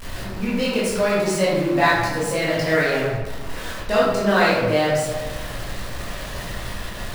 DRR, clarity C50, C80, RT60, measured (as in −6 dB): −8.5 dB, −0.5 dB, 2.5 dB, 1.3 s